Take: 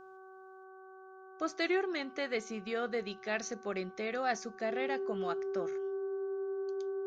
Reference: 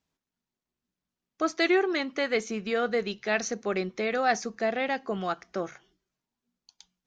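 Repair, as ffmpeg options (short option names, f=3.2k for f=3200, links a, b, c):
-af "bandreject=f=379.3:t=h:w=4,bandreject=f=758.6:t=h:w=4,bandreject=f=1.1379k:t=h:w=4,bandreject=f=1.5172k:t=h:w=4,bandreject=f=390:w=30,asetnsamples=n=441:p=0,asendcmd='0.64 volume volume 8dB',volume=0dB"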